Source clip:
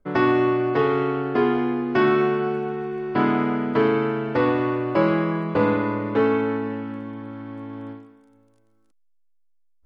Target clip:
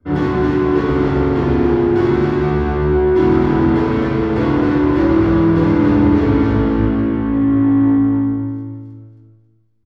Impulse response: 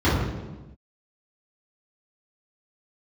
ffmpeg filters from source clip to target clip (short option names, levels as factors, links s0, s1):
-filter_complex "[0:a]asettb=1/sr,asplit=3[s0][s1][s2];[s0]atrim=end=3.584[s3];[s1]atrim=start=3.58:end=4.85,asetpts=PTS-STARTPTS,afade=t=in:d=0.004:c=qsin,afade=t=out:st=1.266:d=0.004:c=qsin,highpass=f=270:p=1[s4];[s2]atrim=start=4.846[s5];[s3][s4]acrossfade=d=0.004:c1=hsin:c2=qsin[s6];[s6][s5]acrossfade=d=0.004:c1=qsin:c2=hsin,acompressor=threshold=0.0891:ratio=3,aeval=exprs='(tanh(63.1*val(0)+0.35)-tanh(0.35))/63.1':c=same,aecho=1:1:270|540|810:0.596|0.149|0.0372[s7];[1:a]atrim=start_sample=2205[s8];[s7][s8]afir=irnorm=-1:irlink=0,volume=0.596"